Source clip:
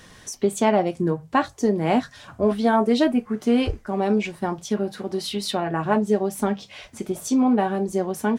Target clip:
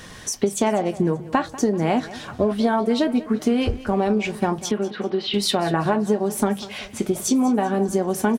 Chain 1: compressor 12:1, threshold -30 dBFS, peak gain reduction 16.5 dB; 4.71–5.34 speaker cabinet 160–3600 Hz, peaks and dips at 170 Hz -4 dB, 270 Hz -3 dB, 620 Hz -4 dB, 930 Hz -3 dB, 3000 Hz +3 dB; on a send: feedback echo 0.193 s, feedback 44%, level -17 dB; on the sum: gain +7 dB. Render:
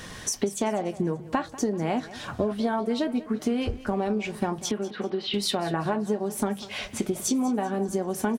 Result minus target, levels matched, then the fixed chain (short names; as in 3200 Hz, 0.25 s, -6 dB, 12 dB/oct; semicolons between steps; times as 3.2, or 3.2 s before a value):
compressor: peak gain reduction +6.5 dB
compressor 12:1, threshold -23 dBFS, peak gain reduction 10 dB; 4.71–5.34 speaker cabinet 160–3600 Hz, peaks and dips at 170 Hz -4 dB, 270 Hz -3 dB, 620 Hz -4 dB, 930 Hz -3 dB, 3000 Hz +3 dB; on a send: feedback echo 0.193 s, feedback 44%, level -17 dB; on the sum: gain +7 dB